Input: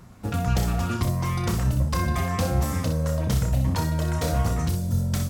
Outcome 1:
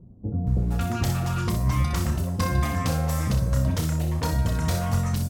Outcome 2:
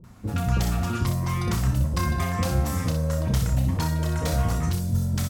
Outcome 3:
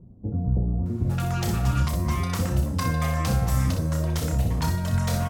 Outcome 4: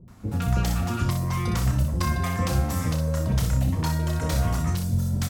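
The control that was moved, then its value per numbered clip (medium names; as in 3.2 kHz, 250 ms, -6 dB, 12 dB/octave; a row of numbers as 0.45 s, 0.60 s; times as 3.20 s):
bands offset in time, time: 470 ms, 40 ms, 860 ms, 80 ms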